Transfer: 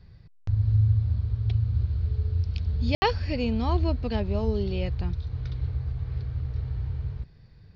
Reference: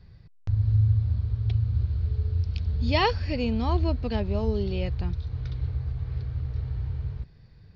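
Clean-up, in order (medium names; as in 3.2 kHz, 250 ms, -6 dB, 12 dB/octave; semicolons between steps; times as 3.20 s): room tone fill 2.95–3.02 s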